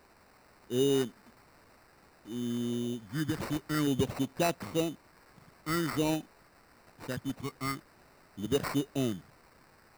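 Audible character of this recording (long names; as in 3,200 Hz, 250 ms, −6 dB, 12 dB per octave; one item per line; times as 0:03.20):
a quantiser's noise floor 10 bits, dither triangular
phaser sweep stages 6, 0.5 Hz, lowest notch 540–2,700 Hz
aliases and images of a low sample rate 3,300 Hz, jitter 0%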